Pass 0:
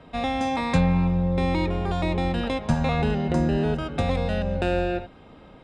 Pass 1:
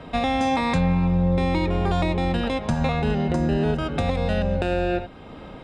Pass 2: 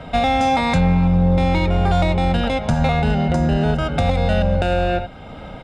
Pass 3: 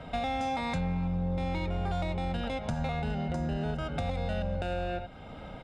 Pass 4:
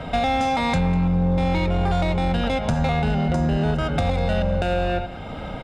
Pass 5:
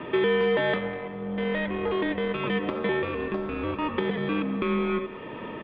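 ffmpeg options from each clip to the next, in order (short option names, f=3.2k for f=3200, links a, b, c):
-af "alimiter=limit=-21.5dB:level=0:latency=1:release=462,volume=8.5dB"
-filter_complex "[0:a]aecho=1:1:1.4:0.47,asplit=2[a][b];[b]asoftclip=type=hard:threshold=-18dB,volume=-3.5dB[c];[a][c]amix=inputs=2:normalize=0"
-af "acompressor=threshold=-24dB:ratio=2,volume=-9dB"
-filter_complex "[0:a]asplit=2[a][b];[b]asoftclip=type=hard:threshold=-33.5dB,volume=-7dB[c];[a][c]amix=inputs=2:normalize=0,aecho=1:1:198:0.126,volume=8.5dB"
-af "highpass=260,highpass=f=500:t=q:w=0.5412,highpass=f=500:t=q:w=1.307,lowpass=f=3.5k:t=q:w=0.5176,lowpass=f=3.5k:t=q:w=0.7071,lowpass=f=3.5k:t=q:w=1.932,afreqshift=-330"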